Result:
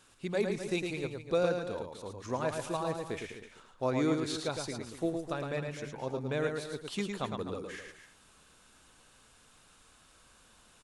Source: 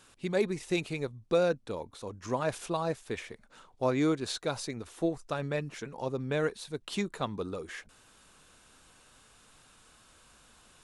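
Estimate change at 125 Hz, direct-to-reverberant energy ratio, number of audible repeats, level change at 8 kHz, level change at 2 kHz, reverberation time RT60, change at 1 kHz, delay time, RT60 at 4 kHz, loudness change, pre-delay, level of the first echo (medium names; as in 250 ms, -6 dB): -1.5 dB, no reverb, 3, -1.5 dB, -1.5 dB, no reverb, -1.5 dB, 109 ms, no reverb, -1.5 dB, no reverb, -5.0 dB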